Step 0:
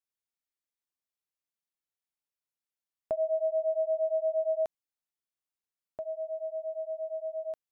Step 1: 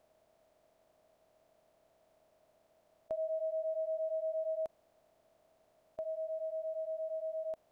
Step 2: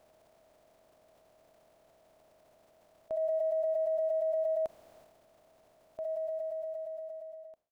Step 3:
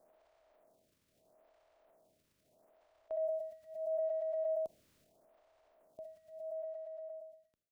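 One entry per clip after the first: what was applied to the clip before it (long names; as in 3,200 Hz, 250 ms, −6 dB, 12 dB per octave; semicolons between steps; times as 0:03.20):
compressor on every frequency bin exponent 0.4; level −8.5 dB
fade-out on the ending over 1.87 s; transient designer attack −5 dB, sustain +7 dB; level +5.5 dB
phaser with staggered stages 0.77 Hz; level −3.5 dB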